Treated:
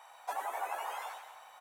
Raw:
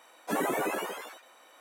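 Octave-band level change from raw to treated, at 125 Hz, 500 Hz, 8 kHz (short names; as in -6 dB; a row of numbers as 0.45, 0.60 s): under -35 dB, -12.5 dB, -9.0 dB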